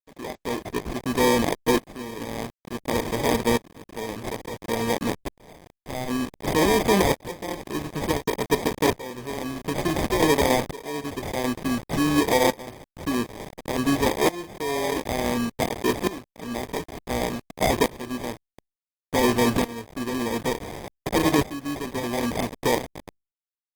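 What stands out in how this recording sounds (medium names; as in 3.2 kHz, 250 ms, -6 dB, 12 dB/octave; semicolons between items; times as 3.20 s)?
a quantiser's noise floor 6-bit, dither none; tremolo saw up 0.56 Hz, depth 90%; aliases and images of a low sample rate 1.4 kHz, jitter 0%; Opus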